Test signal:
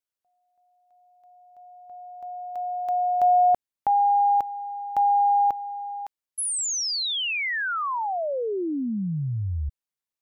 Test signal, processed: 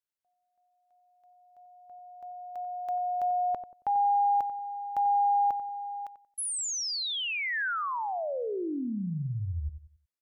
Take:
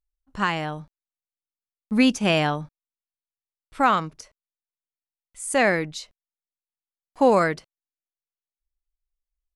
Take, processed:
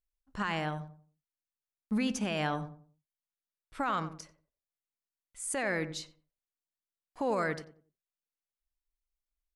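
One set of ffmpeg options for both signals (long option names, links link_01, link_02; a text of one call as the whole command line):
ffmpeg -i in.wav -filter_complex "[0:a]equalizer=frequency=1600:width=2.3:gain=2.5,alimiter=limit=-17.5dB:level=0:latency=1:release=19,asplit=2[link_01][link_02];[link_02]adelay=91,lowpass=frequency=990:poles=1,volume=-10dB,asplit=2[link_03][link_04];[link_04]adelay=91,lowpass=frequency=990:poles=1,volume=0.33,asplit=2[link_05][link_06];[link_06]adelay=91,lowpass=frequency=990:poles=1,volume=0.33,asplit=2[link_07][link_08];[link_08]adelay=91,lowpass=frequency=990:poles=1,volume=0.33[link_09];[link_03][link_05][link_07][link_09]amix=inputs=4:normalize=0[link_10];[link_01][link_10]amix=inputs=2:normalize=0,volume=-5.5dB" out.wav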